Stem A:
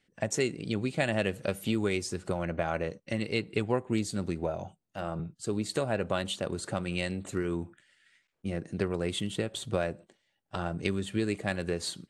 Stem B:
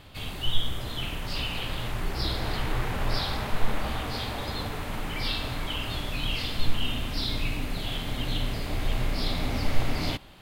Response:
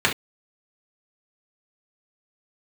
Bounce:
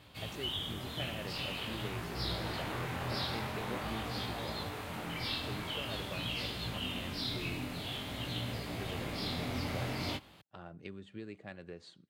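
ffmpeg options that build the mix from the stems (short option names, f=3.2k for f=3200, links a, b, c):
-filter_complex "[0:a]lowpass=4k,volume=-15.5dB[a];[1:a]flanger=delay=17:depth=7.5:speed=0.47,volume=-3dB[b];[a][b]amix=inputs=2:normalize=0,highpass=83"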